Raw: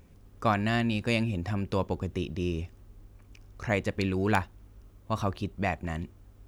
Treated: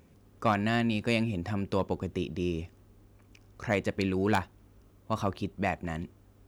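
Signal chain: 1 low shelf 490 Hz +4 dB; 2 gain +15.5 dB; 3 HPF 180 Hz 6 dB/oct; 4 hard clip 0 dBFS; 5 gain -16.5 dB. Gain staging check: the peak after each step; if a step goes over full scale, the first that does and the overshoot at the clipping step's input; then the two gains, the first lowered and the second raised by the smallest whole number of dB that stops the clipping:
-11.0, +4.5, +6.5, 0.0, -16.5 dBFS; step 2, 6.5 dB; step 2 +8.5 dB, step 5 -9.5 dB

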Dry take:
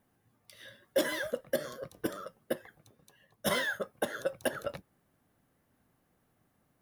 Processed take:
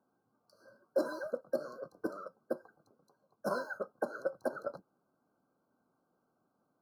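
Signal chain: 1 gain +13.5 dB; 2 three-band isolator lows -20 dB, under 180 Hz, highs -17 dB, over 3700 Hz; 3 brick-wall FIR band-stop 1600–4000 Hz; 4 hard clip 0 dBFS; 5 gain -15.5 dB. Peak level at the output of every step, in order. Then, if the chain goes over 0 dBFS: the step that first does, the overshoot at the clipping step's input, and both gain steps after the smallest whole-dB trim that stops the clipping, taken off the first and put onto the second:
-3.5, -3.0, -4.0, -4.0, -19.5 dBFS; no overload

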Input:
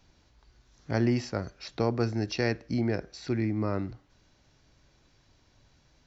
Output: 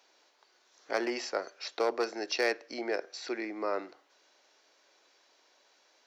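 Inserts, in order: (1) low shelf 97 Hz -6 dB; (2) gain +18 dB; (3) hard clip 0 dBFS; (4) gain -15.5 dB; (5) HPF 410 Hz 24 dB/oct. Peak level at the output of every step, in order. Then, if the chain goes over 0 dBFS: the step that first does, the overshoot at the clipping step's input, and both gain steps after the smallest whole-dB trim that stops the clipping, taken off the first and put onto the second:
-13.5, +4.5, 0.0, -15.5, -16.5 dBFS; step 2, 4.5 dB; step 2 +13 dB, step 4 -10.5 dB

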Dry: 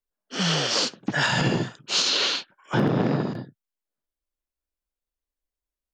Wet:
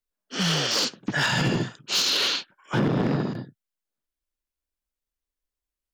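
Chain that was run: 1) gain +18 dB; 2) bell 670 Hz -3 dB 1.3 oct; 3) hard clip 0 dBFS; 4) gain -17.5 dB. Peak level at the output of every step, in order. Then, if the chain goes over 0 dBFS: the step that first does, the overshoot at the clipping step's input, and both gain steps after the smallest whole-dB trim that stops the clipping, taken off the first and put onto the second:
+6.5, +6.0, 0.0, -17.5 dBFS; step 1, 6.0 dB; step 1 +12 dB, step 4 -11.5 dB

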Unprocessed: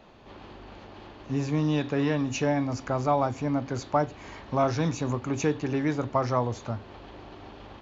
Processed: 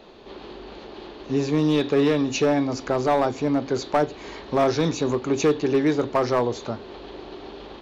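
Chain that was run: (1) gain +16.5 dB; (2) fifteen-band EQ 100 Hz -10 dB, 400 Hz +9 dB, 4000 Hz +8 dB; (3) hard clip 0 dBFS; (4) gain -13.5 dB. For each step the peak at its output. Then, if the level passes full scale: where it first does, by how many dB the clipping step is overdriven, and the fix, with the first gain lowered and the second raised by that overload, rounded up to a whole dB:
+6.5, +8.0, 0.0, -13.5 dBFS; step 1, 8.0 dB; step 1 +8.5 dB, step 4 -5.5 dB

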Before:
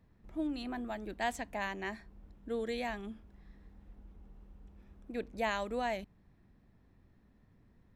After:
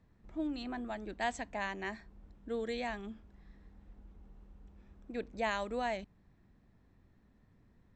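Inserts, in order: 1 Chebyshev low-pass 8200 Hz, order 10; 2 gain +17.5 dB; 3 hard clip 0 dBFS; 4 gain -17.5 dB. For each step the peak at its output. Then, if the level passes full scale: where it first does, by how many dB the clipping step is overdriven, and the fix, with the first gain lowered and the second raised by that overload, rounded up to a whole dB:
-21.0, -3.5, -3.5, -21.0 dBFS; no overload

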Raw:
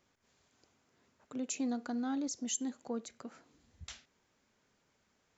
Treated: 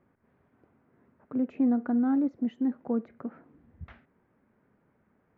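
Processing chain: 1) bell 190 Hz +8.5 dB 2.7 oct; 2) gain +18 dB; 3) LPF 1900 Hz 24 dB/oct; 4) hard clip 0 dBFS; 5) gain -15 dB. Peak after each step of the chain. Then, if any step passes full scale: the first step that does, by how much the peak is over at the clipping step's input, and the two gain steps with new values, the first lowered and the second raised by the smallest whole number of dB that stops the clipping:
-21.0, -3.0, -3.0, -3.0, -18.0 dBFS; no overload

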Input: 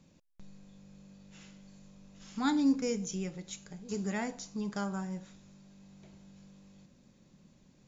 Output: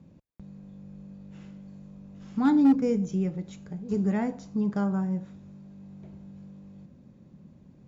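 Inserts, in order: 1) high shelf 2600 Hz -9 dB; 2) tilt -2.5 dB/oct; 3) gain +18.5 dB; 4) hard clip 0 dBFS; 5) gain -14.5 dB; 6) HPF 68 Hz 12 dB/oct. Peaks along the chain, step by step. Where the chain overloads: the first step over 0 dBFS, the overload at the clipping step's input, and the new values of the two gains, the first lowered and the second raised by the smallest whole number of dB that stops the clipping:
-19.5, -14.5, +4.0, 0.0, -14.5, -12.5 dBFS; step 3, 4.0 dB; step 3 +14.5 dB, step 5 -10.5 dB

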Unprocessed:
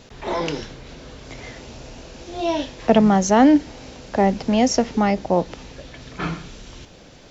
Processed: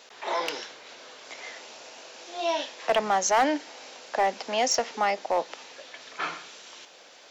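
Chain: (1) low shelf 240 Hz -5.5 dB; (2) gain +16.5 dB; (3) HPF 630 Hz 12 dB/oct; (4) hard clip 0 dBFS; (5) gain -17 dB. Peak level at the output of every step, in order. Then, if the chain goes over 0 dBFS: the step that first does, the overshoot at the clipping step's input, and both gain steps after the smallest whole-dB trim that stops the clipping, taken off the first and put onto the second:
-3.5, +13.0, +8.5, 0.0, -17.0 dBFS; step 2, 8.5 dB; step 2 +7.5 dB, step 5 -8 dB

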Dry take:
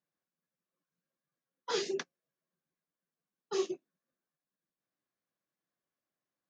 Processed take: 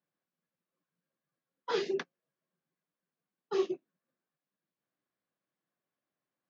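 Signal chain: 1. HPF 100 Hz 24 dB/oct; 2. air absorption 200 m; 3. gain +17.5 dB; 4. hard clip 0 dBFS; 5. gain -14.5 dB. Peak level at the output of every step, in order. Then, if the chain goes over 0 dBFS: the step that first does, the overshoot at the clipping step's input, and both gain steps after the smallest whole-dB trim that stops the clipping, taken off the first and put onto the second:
-21.0, -22.5, -5.0, -5.0, -19.5 dBFS; no overload

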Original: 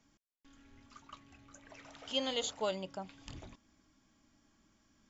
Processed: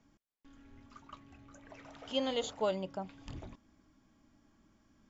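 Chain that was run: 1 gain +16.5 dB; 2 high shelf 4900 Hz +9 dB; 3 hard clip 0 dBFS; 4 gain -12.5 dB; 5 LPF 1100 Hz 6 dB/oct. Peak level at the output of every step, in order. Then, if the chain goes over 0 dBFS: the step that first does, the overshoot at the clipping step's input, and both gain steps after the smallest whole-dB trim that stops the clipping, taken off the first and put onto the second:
-4.5, -3.0, -3.0, -15.5, -20.5 dBFS; no overload

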